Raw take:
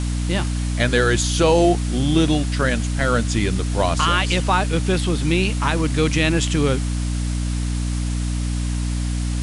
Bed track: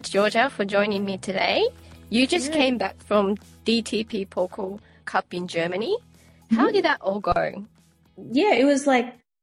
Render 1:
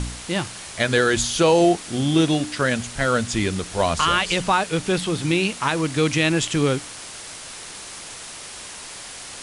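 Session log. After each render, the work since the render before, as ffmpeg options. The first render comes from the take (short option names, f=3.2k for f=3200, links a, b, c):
-af "bandreject=f=60:t=h:w=4,bandreject=f=120:t=h:w=4,bandreject=f=180:t=h:w=4,bandreject=f=240:t=h:w=4,bandreject=f=300:t=h:w=4"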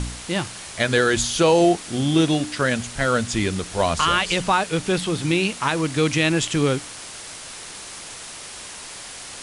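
-af anull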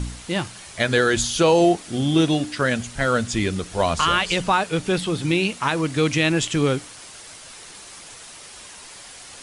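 -af "afftdn=nr=6:nf=-37"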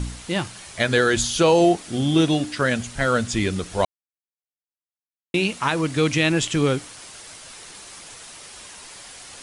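-filter_complex "[0:a]asplit=3[a][b][c];[a]atrim=end=3.85,asetpts=PTS-STARTPTS,afade=t=out:st=3.846:d=0.004:c=hsin[d];[b]atrim=start=3.85:end=5.34,asetpts=PTS-STARTPTS,volume=0[e];[c]atrim=start=5.34,asetpts=PTS-STARTPTS,afade=t=in:d=0.004:c=hsin[f];[d][e][f]concat=n=3:v=0:a=1"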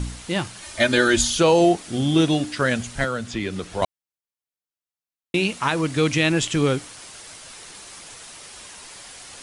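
-filter_complex "[0:a]asettb=1/sr,asplit=3[a][b][c];[a]atrim=end=0.624[d];[b]atrim=start=0.62:end=1.35,asetpts=PTS-STARTPTS,afade=t=in:d=0.004:c=qsin,afade=t=out:st=0.726:d=0.004:c=qsin,aecho=1:1:3.3:0.85,atrim=end_sample=32193[e];[c]atrim=start=1.346[f];[d][e]acrossfade=d=0.004:c1=hsin:c2=qsin[g];[g][f]acrossfade=d=0.004:c1=qsin:c2=hsin,asettb=1/sr,asplit=3[h][i][j];[h]atrim=end=3.044[k];[i]atrim=start=3.04:end=3.82,asetpts=PTS-STARTPTS,afade=t=in:d=0.004:c=qsin,afade=t=out:st=0.776:d=0.004:c=qsin,acrossover=split=170|4600[l][m][n];[l]acompressor=threshold=-37dB:ratio=4[o];[m]acompressor=threshold=-24dB:ratio=4[p];[n]acompressor=threshold=-48dB:ratio=4[q];[o][p][q]amix=inputs=3:normalize=0[r];[j]atrim=start=3.816[s];[k][r]acrossfade=d=0.004:c1=hsin:c2=qsin[t];[t][s]acrossfade=d=0.004:c1=qsin:c2=hsin"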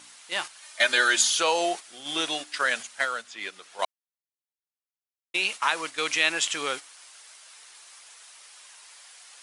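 -af "highpass=900,agate=range=-8dB:threshold=-33dB:ratio=16:detection=peak"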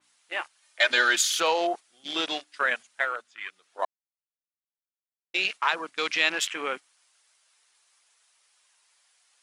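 -af "afwtdn=0.0224,adynamicequalizer=threshold=0.0158:dfrequency=3700:dqfactor=0.7:tfrequency=3700:tqfactor=0.7:attack=5:release=100:ratio=0.375:range=2:mode=cutabove:tftype=highshelf"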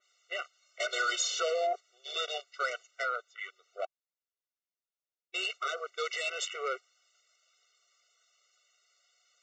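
-af "aresample=16000,asoftclip=type=tanh:threshold=-23dB,aresample=44100,afftfilt=real='re*eq(mod(floor(b*sr/1024/380),2),1)':imag='im*eq(mod(floor(b*sr/1024/380),2),1)':win_size=1024:overlap=0.75"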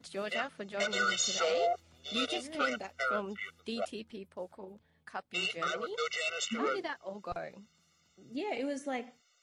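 -filter_complex "[1:a]volume=-17.5dB[a];[0:a][a]amix=inputs=2:normalize=0"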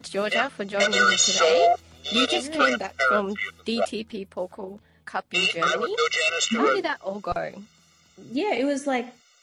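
-af "volume=11.5dB"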